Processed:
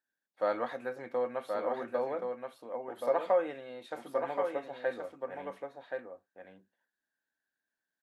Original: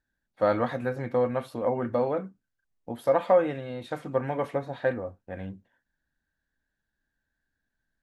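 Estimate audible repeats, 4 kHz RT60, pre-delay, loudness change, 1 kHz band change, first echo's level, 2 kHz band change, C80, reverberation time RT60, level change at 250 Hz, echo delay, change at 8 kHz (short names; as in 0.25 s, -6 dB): 1, none, none, -7.0 dB, -5.0 dB, -5.0 dB, -5.0 dB, none, none, -11.0 dB, 1.076 s, n/a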